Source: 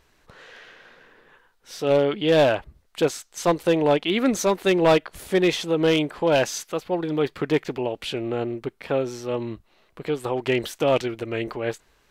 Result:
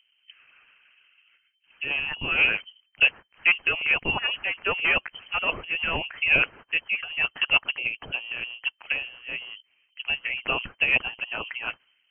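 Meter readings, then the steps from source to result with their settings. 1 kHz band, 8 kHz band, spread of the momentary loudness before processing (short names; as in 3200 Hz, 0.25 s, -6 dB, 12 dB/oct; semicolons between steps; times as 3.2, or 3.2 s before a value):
-7.0 dB, under -40 dB, 10 LU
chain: low-pass opened by the level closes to 680 Hz, open at -18 dBFS; harmonic-percussive split harmonic -13 dB; inverted band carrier 3100 Hz; gain +1.5 dB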